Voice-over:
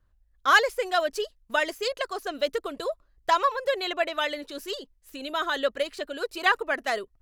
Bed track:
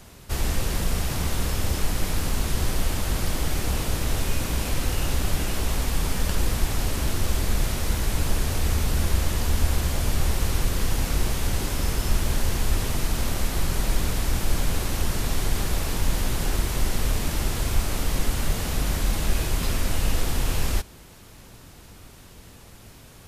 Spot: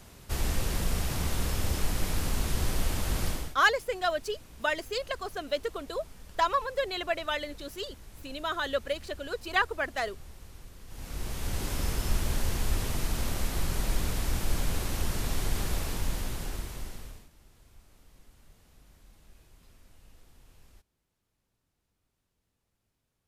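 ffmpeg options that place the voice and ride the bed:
-filter_complex "[0:a]adelay=3100,volume=0.631[s0];[1:a]volume=5.62,afade=t=out:st=3.27:d=0.28:silence=0.0944061,afade=t=in:st=10.87:d=0.85:silence=0.105925,afade=t=out:st=15.73:d=1.56:silence=0.0398107[s1];[s0][s1]amix=inputs=2:normalize=0"

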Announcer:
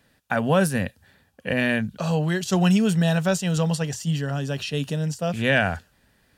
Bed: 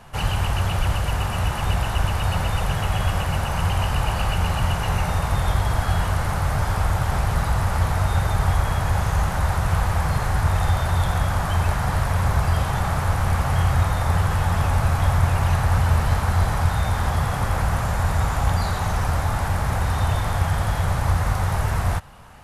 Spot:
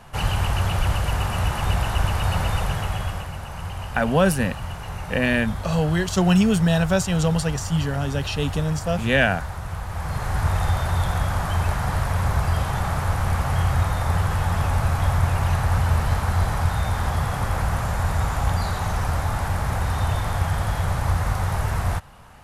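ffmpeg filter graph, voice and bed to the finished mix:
-filter_complex "[0:a]adelay=3650,volume=1.19[s0];[1:a]volume=2.66,afade=t=out:st=2.52:d=0.81:silence=0.316228,afade=t=in:st=9.87:d=0.58:silence=0.375837[s1];[s0][s1]amix=inputs=2:normalize=0"

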